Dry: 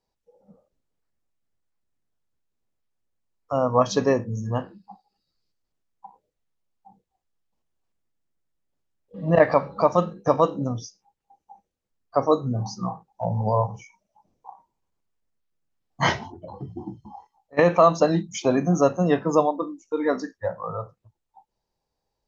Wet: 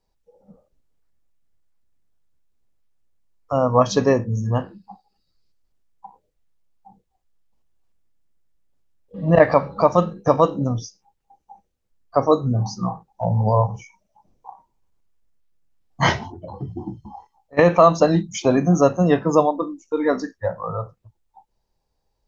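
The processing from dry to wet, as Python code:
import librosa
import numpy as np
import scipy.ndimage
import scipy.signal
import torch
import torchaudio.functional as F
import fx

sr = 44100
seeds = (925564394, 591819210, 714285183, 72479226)

y = fx.low_shelf(x, sr, hz=74.0, db=11.0)
y = y * librosa.db_to_amplitude(3.0)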